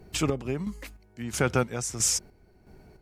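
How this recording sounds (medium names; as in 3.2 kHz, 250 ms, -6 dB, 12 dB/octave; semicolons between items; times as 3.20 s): a quantiser's noise floor 12-bit, dither none; chopped level 1.5 Hz, depth 60%, duty 45%; MP3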